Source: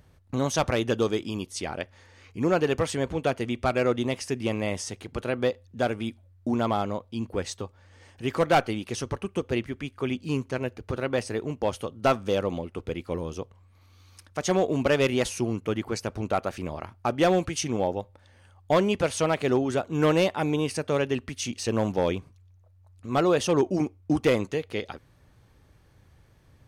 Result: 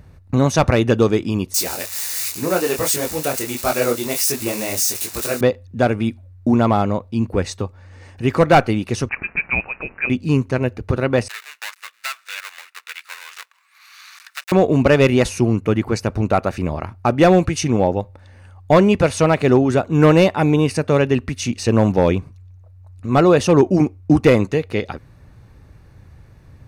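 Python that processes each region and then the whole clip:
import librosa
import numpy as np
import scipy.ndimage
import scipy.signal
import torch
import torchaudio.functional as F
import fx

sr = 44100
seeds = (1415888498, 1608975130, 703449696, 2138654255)

y = fx.chain(x, sr, fx.crossing_spikes(level_db=-21.5),
    fx.bass_treble(bass_db=-10, treble_db=8),
    fx.detune_double(cents=48), at=(1.54, 5.41))
y = fx.chain(y, sr, fx.crossing_spikes(level_db=-29.0),
    fx.highpass(hz=280.0, slope=12),
    fx.freq_invert(carrier_hz=2800), at=(9.09, 10.1))
y = fx.chain(y, sr, fx.dead_time(dead_ms=0.22),
    fx.highpass(hz=1400.0, slope=24),
    fx.band_squash(depth_pct=70), at=(11.28, 14.52))
y = fx.bass_treble(y, sr, bass_db=5, treble_db=-4)
y = fx.notch(y, sr, hz=3200.0, q=7.8)
y = y * librosa.db_to_amplitude(8.5)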